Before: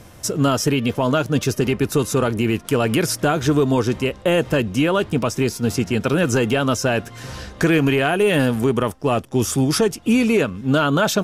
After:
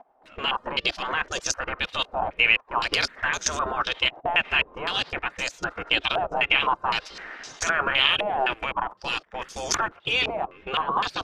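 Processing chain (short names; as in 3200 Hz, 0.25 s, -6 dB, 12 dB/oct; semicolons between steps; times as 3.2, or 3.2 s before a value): level quantiser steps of 21 dB; spectral gate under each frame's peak -15 dB weak; stepped low-pass 3.9 Hz 750–6300 Hz; gain +5 dB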